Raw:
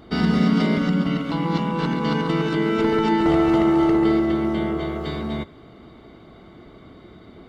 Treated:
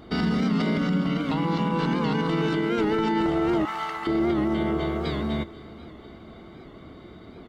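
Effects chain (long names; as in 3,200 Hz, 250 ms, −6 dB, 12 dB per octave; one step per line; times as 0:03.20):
0:03.65–0:04.07: high-pass filter 950 Hz 24 dB per octave
brickwall limiter −16 dBFS, peak gain reduction 9 dB
on a send: repeating echo 491 ms, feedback 55%, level −20 dB
on the sum: wow of a warped record 78 rpm, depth 100 cents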